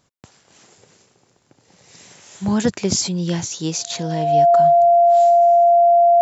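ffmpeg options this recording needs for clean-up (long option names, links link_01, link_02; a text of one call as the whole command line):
ffmpeg -i in.wav -af "bandreject=frequency=690:width=30" out.wav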